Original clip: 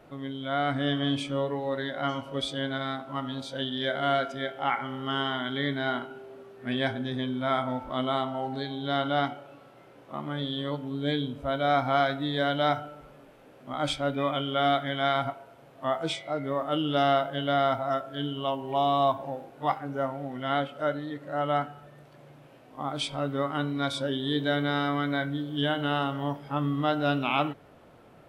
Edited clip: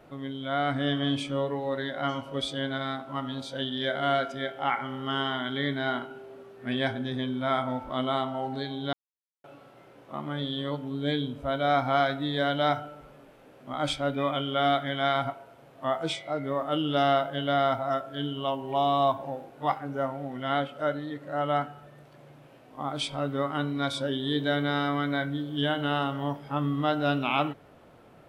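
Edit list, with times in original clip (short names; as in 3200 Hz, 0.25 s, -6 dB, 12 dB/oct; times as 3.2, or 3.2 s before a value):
8.93–9.44 mute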